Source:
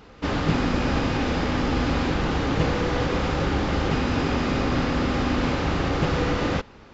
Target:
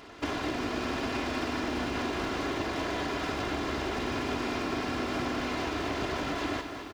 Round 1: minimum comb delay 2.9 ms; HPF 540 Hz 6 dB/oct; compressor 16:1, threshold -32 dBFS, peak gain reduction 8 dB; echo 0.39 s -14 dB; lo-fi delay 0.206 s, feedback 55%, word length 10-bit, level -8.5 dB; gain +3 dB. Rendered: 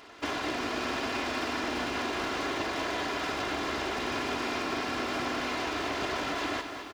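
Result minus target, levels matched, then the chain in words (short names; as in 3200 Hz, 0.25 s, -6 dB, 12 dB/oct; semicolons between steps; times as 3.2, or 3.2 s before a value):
125 Hz band -6.5 dB
minimum comb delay 2.9 ms; HPF 160 Hz 6 dB/oct; compressor 16:1, threshold -32 dBFS, peak gain reduction 11.5 dB; echo 0.39 s -14 dB; lo-fi delay 0.206 s, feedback 55%, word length 10-bit, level -8.5 dB; gain +3 dB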